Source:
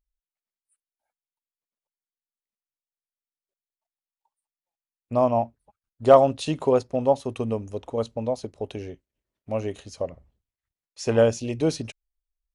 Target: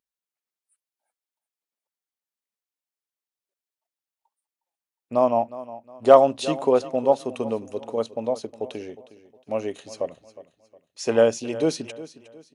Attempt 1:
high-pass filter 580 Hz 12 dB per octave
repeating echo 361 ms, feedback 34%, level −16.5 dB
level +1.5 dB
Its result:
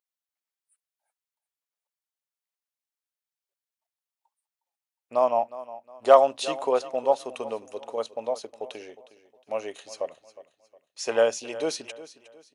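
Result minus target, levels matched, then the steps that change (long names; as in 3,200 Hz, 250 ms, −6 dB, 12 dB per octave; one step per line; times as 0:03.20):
250 Hz band −8.5 dB
change: high-pass filter 220 Hz 12 dB per octave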